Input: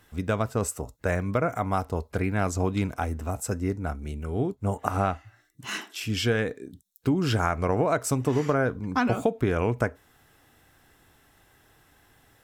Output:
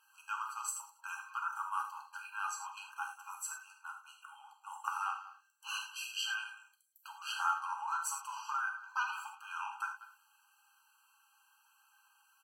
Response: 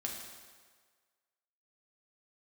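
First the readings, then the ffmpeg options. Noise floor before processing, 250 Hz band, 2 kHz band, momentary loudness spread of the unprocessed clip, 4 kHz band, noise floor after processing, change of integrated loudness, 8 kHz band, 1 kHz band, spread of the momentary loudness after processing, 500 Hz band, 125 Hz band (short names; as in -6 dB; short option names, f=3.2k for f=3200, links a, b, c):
-61 dBFS, under -40 dB, -6.0 dB, 8 LU, -5.5 dB, -71 dBFS, -12.0 dB, -5.5 dB, -7.0 dB, 15 LU, under -40 dB, under -40 dB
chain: -filter_complex "[0:a]equalizer=f=180:w=0.33:g=-6.5,flanger=delay=2.2:depth=1.4:regen=60:speed=1.6:shape=triangular,asplit=2[a][b];[b]adelay=190,highpass=300,lowpass=3.4k,asoftclip=type=hard:threshold=-22dB,volume=-15dB[c];[a][c]amix=inputs=2:normalize=0[d];[1:a]atrim=start_sample=2205,afade=t=out:st=0.16:d=0.01,atrim=end_sample=7497[e];[d][e]afir=irnorm=-1:irlink=0,afftfilt=real='re*eq(mod(floor(b*sr/1024/810),2),1)':imag='im*eq(mod(floor(b*sr/1024/810),2),1)':win_size=1024:overlap=0.75,volume=1dB"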